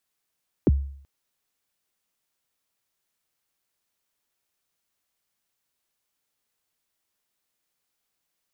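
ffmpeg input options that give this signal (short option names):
-f lavfi -i "aevalsrc='0.251*pow(10,-3*t/0.59)*sin(2*PI*(450*0.03/log(69/450)*(exp(log(69/450)*min(t,0.03)/0.03)-1)+69*max(t-0.03,0)))':d=0.38:s=44100"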